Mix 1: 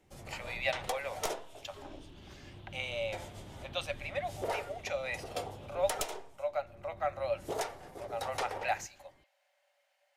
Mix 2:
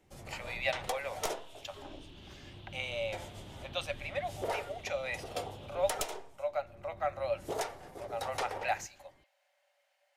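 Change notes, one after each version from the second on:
second sound +5.5 dB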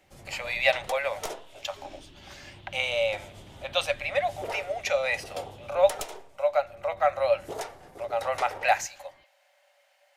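speech +10.0 dB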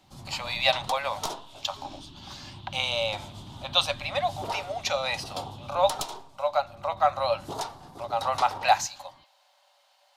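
master: add ten-band EQ 125 Hz +7 dB, 250 Hz +7 dB, 500 Hz -9 dB, 1000 Hz +11 dB, 2000 Hz -10 dB, 4000 Hz +10 dB

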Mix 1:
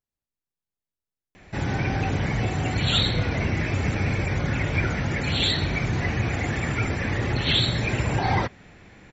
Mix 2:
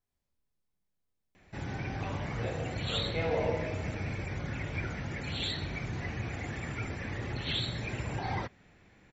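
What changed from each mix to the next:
background -11.5 dB; reverb: on, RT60 1.5 s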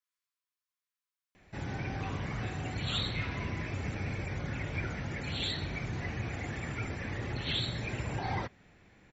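speech: add brick-wall FIR high-pass 960 Hz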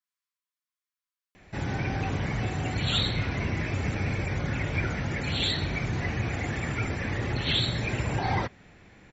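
background +7.0 dB

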